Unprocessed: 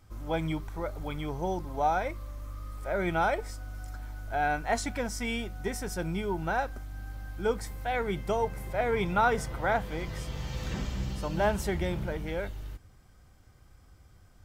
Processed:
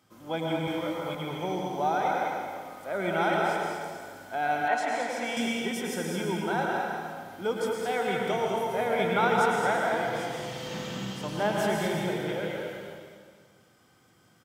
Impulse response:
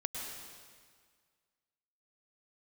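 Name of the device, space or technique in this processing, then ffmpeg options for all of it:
stadium PA: -filter_complex "[0:a]highpass=f=150:w=0.5412,highpass=f=150:w=1.3066,equalizer=f=3200:t=o:w=0.27:g=5,aecho=1:1:160.3|215.7:0.282|0.501[s0];[1:a]atrim=start_sample=2205[s1];[s0][s1]afir=irnorm=-1:irlink=0,asettb=1/sr,asplit=3[s2][s3][s4];[s2]atrim=end=0.654[s5];[s3]atrim=start=0.65:end=1.15,asetpts=PTS-STARTPTS,afade=t=in:d=0.004:c=qsin,afade=t=out:st=0.496:d=0.004:c=qsin,asplit=2[s6][s7];[s7]adelay=22,volume=0.75[s8];[s6][s8]amix=inputs=2:normalize=0,atrim=end_sample=22050[s9];[s4]atrim=start=1.146[s10];[s5][s9]acrossfade=d=0.004:c1=hsin:c2=qsin[s11];[s11][s10]acrossfade=d=0.004:c1=qsin:c2=hsin,asettb=1/sr,asplit=3[s12][s13][s14];[s12]atrim=end=4.684[s15];[s13]atrim=start=4.68:end=5.37,asetpts=PTS-STARTPTS,afade=t=in:d=0.004:c=qsin,afade=t=out:st=0.686:d=0.004:c=qsin,bass=f=250:g=-13,treble=f=4000:g=-8[s16];[s14]atrim=start=5.366[s17];[s15][s16]acrossfade=d=0.004:c1=hsin:c2=qsin[s18];[s18][s17]acrossfade=d=0.004:c1=qsin:c2=hsin"

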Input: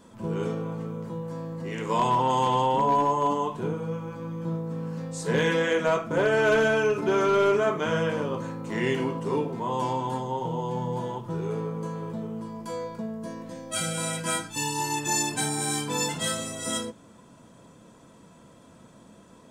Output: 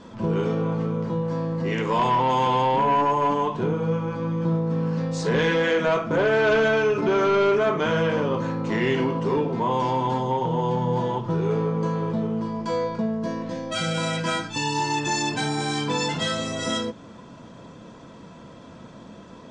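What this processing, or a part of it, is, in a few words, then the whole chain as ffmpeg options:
soft clipper into limiter: -af "asoftclip=type=tanh:threshold=0.119,alimiter=limit=0.0631:level=0:latency=1:release=274,lowpass=f=5700:w=0.5412,lowpass=f=5700:w=1.3066,volume=2.66"

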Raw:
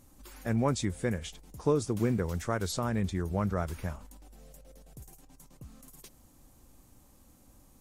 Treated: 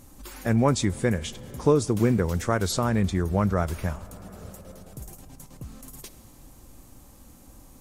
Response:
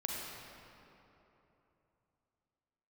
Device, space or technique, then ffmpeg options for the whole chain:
ducked reverb: -filter_complex "[0:a]asplit=3[s0][s1][s2];[1:a]atrim=start_sample=2205[s3];[s1][s3]afir=irnorm=-1:irlink=0[s4];[s2]apad=whole_len=344342[s5];[s4][s5]sidechaincompress=threshold=0.00794:ratio=8:attack=47:release=555,volume=0.335[s6];[s0][s6]amix=inputs=2:normalize=0,volume=2.11"

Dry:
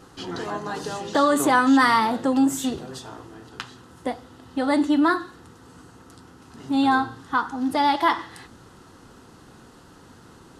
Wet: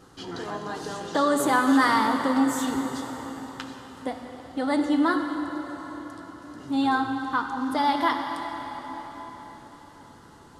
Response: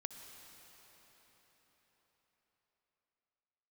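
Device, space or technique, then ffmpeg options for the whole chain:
cathedral: -filter_complex "[1:a]atrim=start_sample=2205[s0];[0:a][s0]afir=irnorm=-1:irlink=0,bandreject=f=2600:w=18"

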